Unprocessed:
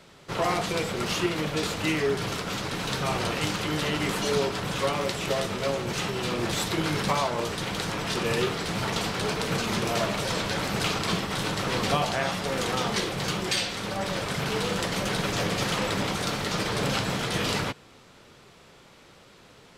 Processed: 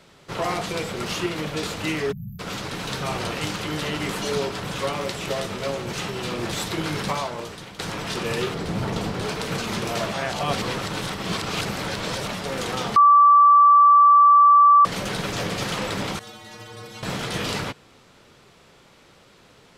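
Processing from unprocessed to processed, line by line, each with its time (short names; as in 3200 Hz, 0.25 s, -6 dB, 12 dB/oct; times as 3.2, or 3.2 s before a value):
2.12–2.4 spectral delete 220–12000 Hz
7.04–7.79 fade out, to -13 dB
8.54–9.22 tilt shelf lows +5.5 dB, about 850 Hz
10.12–12.33 reverse
12.96–14.85 bleep 1160 Hz -9.5 dBFS
16.19–17.03 metallic resonator 110 Hz, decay 0.49 s, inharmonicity 0.008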